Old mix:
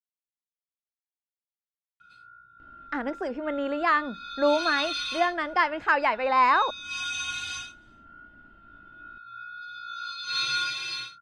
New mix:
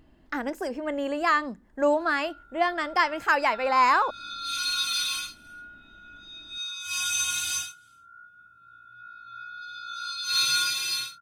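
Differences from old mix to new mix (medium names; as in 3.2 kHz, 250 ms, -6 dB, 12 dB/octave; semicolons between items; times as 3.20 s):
speech: entry -2.60 s; master: remove low-pass 3.5 kHz 12 dB/octave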